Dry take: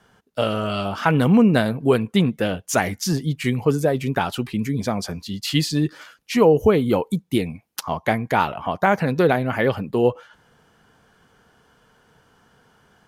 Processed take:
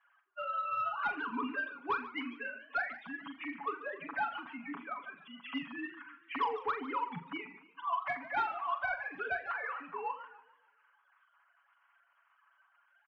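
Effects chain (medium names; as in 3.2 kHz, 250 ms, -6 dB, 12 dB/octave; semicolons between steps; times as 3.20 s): formants replaced by sine waves; resonant low shelf 740 Hz -13.5 dB, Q 3; comb 7.1 ms, depth 90%; saturation -15.5 dBFS, distortion -11 dB; distance through air 300 m; on a send: flutter echo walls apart 7.2 m, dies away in 0.26 s; on the sum: modulated delay 145 ms, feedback 41%, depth 187 cents, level -15 dB; trim -9 dB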